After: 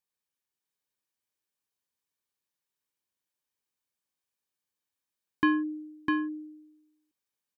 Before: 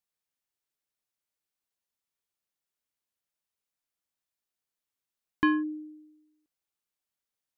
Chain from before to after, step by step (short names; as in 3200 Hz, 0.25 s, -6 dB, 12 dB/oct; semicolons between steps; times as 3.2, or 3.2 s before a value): notch comb 680 Hz; echo 0.653 s -3.5 dB